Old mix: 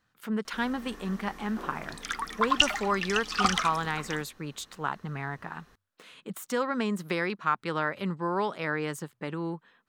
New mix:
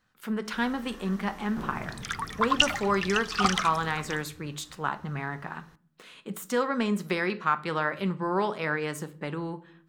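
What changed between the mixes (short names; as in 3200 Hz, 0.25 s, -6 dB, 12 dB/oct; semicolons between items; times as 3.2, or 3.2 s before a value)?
speech: send on; first sound: remove HPF 280 Hz 24 dB/oct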